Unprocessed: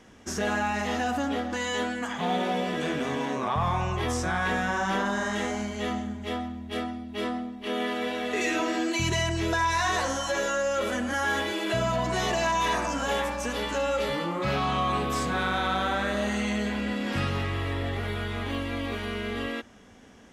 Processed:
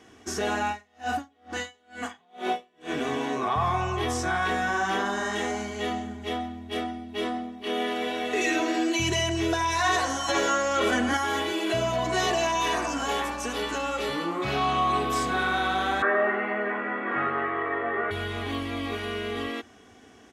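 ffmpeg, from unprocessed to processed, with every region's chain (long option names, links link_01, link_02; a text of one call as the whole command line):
ffmpeg -i in.wav -filter_complex "[0:a]asettb=1/sr,asplit=3[link_01][link_02][link_03];[link_01]atrim=end=0.674[link_04];[link_02]atrim=start=0.67:end=2.93,asetpts=PTS-STARTPTS,afade=type=in:duration=0.004:curve=qsin,afade=type=out:start_time=2.256:duration=0.004:curve=qsin,asplit=2[link_05][link_06];[link_06]adelay=35,volume=-6dB[link_07];[link_05][link_07]amix=inputs=2:normalize=0,atrim=end_sample=99666,aeval=exprs='val(0)*pow(10,-39*(0.5-0.5*cos(2*PI*2.2*n/s))/20)':channel_layout=same[link_08];[link_03]atrim=start=2.926[link_09];[link_04][link_08]acrossfade=duration=0.004:curve1=hsin:curve2=qsin[link_10];[link_10][link_09]acrossfade=duration=0.004:curve1=qsin:curve2=hsin,asettb=1/sr,asplit=3[link_11][link_12][link_13];[link_11]atrim=end=10.284[link_14];[link_12]atrim=start=10.28:end=11.17,asetpts=PTS-STARTPTS,afade=type=in:duration=0.004:curve=qsin,afade=type=out:start_time=0.886:duration=0.004:curve=qsin,highshelf=frequency=9900:gain=-9.5,acontrast=33[link_15];[link_13]atrim=start=11.166[link_16];[link_14][link_15]acrossfade=duration=0.004:curve1=hsin:curve2=qsin[link_17];[link_17][link_16]acrossfade=duration=0.004:curve1=qsin:curve2=hsin,asettb=1/sr,asplit=3[link_18][link_19][link_20];[link_18]atrim=end=16.024[link_21];[link_19]atrim=start=16.02:end=18.11,asetpts=PTS-STARTPTS,afade=type=in:duration=0.004:curve=qsin,afade=type=out:start_time=2.086:duration=0.004:curve=qsin,highpass=frequency=180:width=0.5412,highpass=frequency=180:width=1.3066,equalizer=frequency=190:width_type=q:width=4:gain=-4,equalizer=frequency=270:width_type=q:width=4:gain=-7,equalizer=frequency=400:width_type=q:width=4:gain=6,equalizer=frequency=650:width_type=q:width=4:gain=4,equalizer=frequency=1200:width_type=q:width=4:gain=10,equalizer=frequency=1800:width_type=q:width=4:gain=8,lowpass=frequency=2000:width=0.5412,lowpass=frequency=2000:width=1.3066,asplit=2[link_22][link_23];[link_23]adelay=13,volume=-4.5dB[link_24];[link_22][link_24]amix=inputs=2:normalize=0,atrim=end_sample=92169[link_25];[link_20]atrim=start=18.106[link_26];[link_21][link_25]acrossfade=duration=0.004:curve1=hsin:curve2=qsin[link_27];[link_27][link_26]acrossfade=duration=0.004:curve1=qsin:curve2=hsin,highpass=89,aecho=1:1:2.7:0.53" out.wav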